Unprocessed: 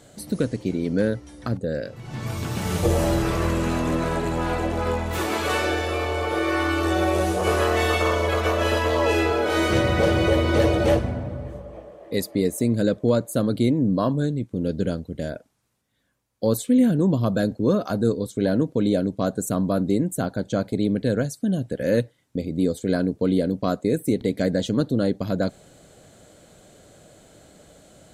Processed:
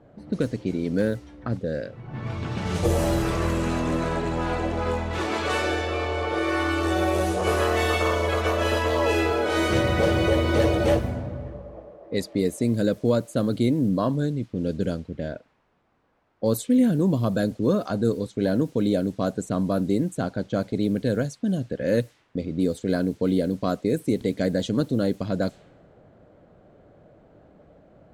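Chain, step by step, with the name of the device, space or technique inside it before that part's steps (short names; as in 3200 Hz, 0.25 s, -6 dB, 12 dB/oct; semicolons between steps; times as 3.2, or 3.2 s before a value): cassette deck with a dynamic noise filter (white noise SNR 32 dB; low-pass opened by the level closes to 1000 Hz, open at -17.5 dBFS); 13.89–14.43 high shelf 8100 Hz -6 dB; gain -1.5 dB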